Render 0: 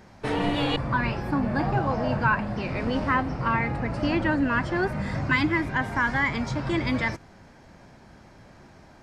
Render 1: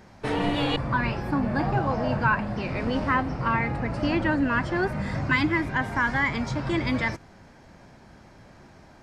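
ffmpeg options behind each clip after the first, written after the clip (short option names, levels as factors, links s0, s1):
-af anull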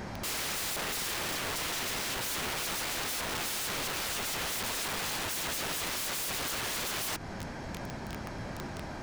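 -filter_complex "[0:a]asplit=2[s0][s1];[s1]asoftclip=type=tanh:threshold=0.106,volume=0.668[s2];[s0][s2]amix=inputs=2:normalize=0,acompressor=threshold=0.0355:ratio=5,aeval=exprs='(mod(63.1*val(0)+1,2)-1)/63.1':c=same,volume=2.11"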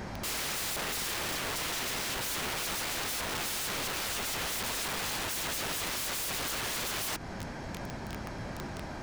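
-af "aeval=exprs='val(0)+0.002*(sin(2*PI*50*n/s)+sin(2*PI*2*50*n/s)/2+sin(2*PI*3*50*n/s)/3+sin(2*PI*4*50*n/s)/4+sin(2*PI*5*50*n/s)/5)':c=same"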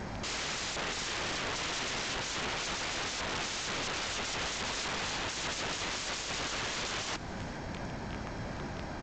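-af "aecho=1:1:416:0.106" -ar 16000 -c:a g722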